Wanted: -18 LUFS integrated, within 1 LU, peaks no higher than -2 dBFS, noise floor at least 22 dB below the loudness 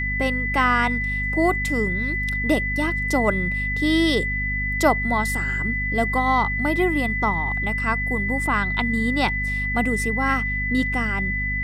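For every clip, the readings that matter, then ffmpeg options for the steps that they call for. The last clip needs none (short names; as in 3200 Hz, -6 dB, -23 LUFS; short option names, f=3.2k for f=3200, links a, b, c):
hum 50 Hz; harmonics up to 250 Hz; hum level -26 dBFS; steady tone 2000 Hz; tone level -24 dBFS; loudness -21.5 LUFS; peak -5.0 dBFS; loudness target -18.0 LUFS
-> -af "bandreject=f=50:t=h:w=4,bandreject=f=100:t=h:w=4,bandreject=f=150:t=h:w=4,bandreject=f=200:t=h:w=4,bandreject=f=250:t=h:w=4"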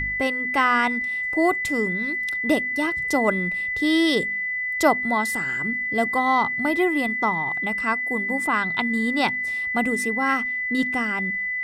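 hum none; steady tone 2000 Hz; tone level -24 dBFS
-> -af "bandreject=f=2k:w=30"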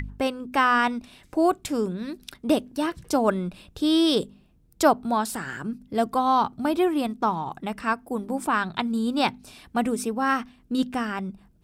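steady tone none; loudness -25.5 LUFS; peak -5.0 dBFS; loudness target -18.0 LUFS
-> -af "volume=7.5dB,alimiter=limit=-2dB:level=0:latency=1"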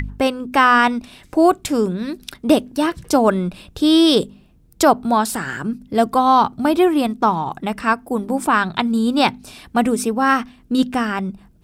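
loudness -18.0 LUFS; peak -2.0 dBFS; noise floor -51 dBFS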